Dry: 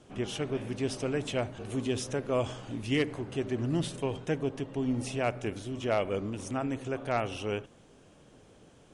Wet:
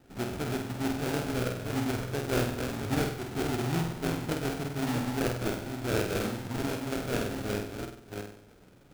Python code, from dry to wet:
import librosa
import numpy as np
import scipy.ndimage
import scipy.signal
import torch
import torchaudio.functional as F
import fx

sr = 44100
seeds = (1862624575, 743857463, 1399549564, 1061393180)

p1 = fx.reverse_delay(x, sr, ms=357, wet_db=-4.5)
p2 = fx.sample_hold(p1, sr, seeds[0], rate_hz=1100.0, jitter_pct=20)
p3 = p2 + fx.room_flutter(p2, sr, wall_m=8.3, rt60_s=0.57, dry=0)
p4 = fx.formant_shift(p3, sr, semitones=-3)
y = p4 * librosa.db_to_amplitude(-2.0)